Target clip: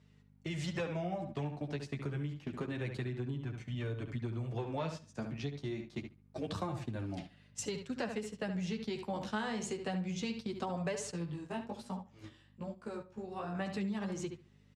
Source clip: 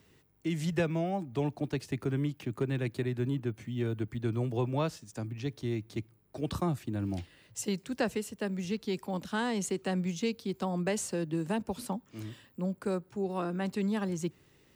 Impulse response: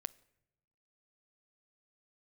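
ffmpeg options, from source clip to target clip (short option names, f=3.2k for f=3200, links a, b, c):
-filter_complex "[0:a]volume=22.5dB,asoftclip=hard,volume=-22.5dB,flanger=delay=6.7:depth=7.4:regen=6:speed=0.27:shape=sinusoidal,asplit=2[a][b];[b]adelay=70,lowpass=f=3.7k:p=1,volume=-8dB,asplit=2[c][d];[d]adelay=70,lowpass=f=3.7k:p=1,volume=0.31,asplit=2[e][f];[f]adelay=70,lowpass=f=3.7k:p=1,volume=0.31,asplit=2[g][h];[h]adelay=70,lowpass=f=3.7k:p=1,volume=0.31[i];[a][c][e][g][i]amix=inputs=5:normalize=0,aeval=exprs='val(0)+0.00282*(sin(2*PI*50*n/s)+sin(2*PI*2*50*n/s)/2+sin(2*PI*3*50*n/s)/3+sin(2*PI*4*50*n/s)/4+sin(2*PI*5*50*n/s)/5)':c=same,acompressor=threshold=-37dB:ratio=8,asettb=1/sr,asplit=3[j][k][l];[j]atrim=end=11.114[m];[k]atrim=start=11.11:end=13.55,asetpts=PTS-STARTPTS,afade=t=in:d=0.004:c=qsin,afade=t=out:st=2.436:d=0.004:c=qsin,flanger=delay=16.5:depth=6.1:speed=1.2[n];[l]atrim=start=13.546[o];[m][n]acrossfade=d=0.004:c1=hsin:c2=qsin[p];[p][o]acrossfade=d=0.004:c1=qsin:c2=hsin,agate=range=-10dB:threshold=-45dB:ratio=16:detection=peak,highpass=110,lowpass=6.8k,equalizer=f=310:w=1.8:g=-5.5,volume=5.5dB"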